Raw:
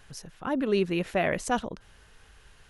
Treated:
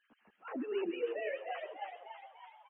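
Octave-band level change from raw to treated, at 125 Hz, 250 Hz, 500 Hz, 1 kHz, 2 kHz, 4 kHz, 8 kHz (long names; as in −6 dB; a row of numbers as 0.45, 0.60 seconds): below −30 dB, −13.0 dB, −8.5 dB, −11.0 dB, −11.5 dB, −12.5 dB, below −40 dB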